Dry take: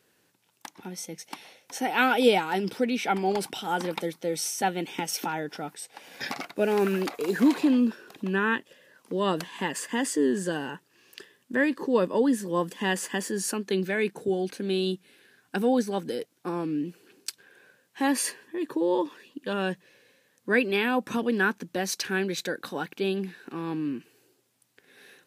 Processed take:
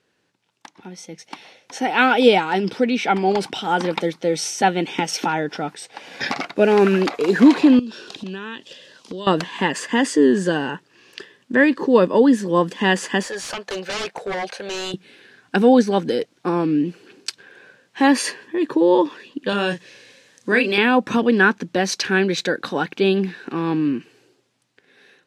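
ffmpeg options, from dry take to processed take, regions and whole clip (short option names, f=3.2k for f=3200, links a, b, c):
-filter_complex "[0:a]asettb=1/sr,asplit=3[a][b][c];[a]atrim=end=7.794[d];[b]atrim=start=7.79:end=9.27,asetpts=PTS-STARTPTS,afade=t=in:d=0.004:c=qsin,afade=t=out:st=1.476:d=0.004:c=qsin,lowpass=10k,highshelf=f=2.6k:t=q:w=1.5:g=9.5,acompressor=threshold=-36dB:ratio=12:attack=3.2:release=140:knee=1:detection=peak[e];[c]atrim=start=9.266[f];[d][e]acrossfade=d=0.004:c1=hsin:c2=qsin[g];[g][f]acrossfade=d=0.004:c1=qsin:c2=hsin,asettb=1/sr,asplit=3[h][i][j];[h]atrim=end=13.234[k];[i]atrim=start=13.23:end=14.94,asetpts=PTS-STARTPTS,afade=t=in:d=0.004:c=qsin,afade=t=out:st=1.706:d=0.004:c=qsin,lowshelf=f=420:t=q:w=3:g=-14,aeval=exprs='0.0299*(abs(mod(val(0)/0.0299+3,4)-2)-1)':c=same[l];[j]atrim=start=14.936[m];[k][l]acrossfade=d=0.004:c1=hsin:c2=qsin[n];[n][m]acrossfade=d=0.004:c1=qsin:c2=hsin,asettb=1/sr,asplit=3[o][p][q];[o]atrim=end=19.494[r];[p]atrim=start=19.49:end=20.78,asetpts=PTS-STARTPTS,afade=t=in:d=0.004:c=qsin,afade=t=out:st=1.286:d=0.004:c=qsin,equalizer=f=7.6k:t=o:w=2.1:g=10.5,acompressor=threshold=-32dB:ratio=1.5:attack=3.2:release=140:knee=1:detection=peak,asplit=2[s][t];[t]adelay=34,volume=-7dB[u];[s][u]amix=inputs=2:normalize=0,atrim=end_sample=56889[v];[q]atrim=start=20.776[w];[r][v]acrossfade=d=0.004:c1=hsin:c2=qsin[x];[x][w]acrossfade=d=0.004:c1=qsin:c2=hsin,dynaudnorm=f=240:g=11:m=11.5dB,lowpass=5.7k"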